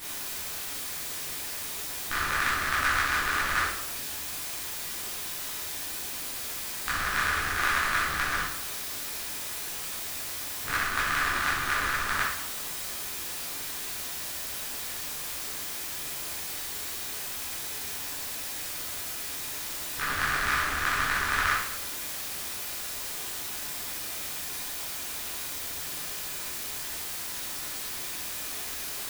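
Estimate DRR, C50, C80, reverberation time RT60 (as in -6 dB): -9.0 dB, 1.5 dB, 5.0 dB, 0.75 s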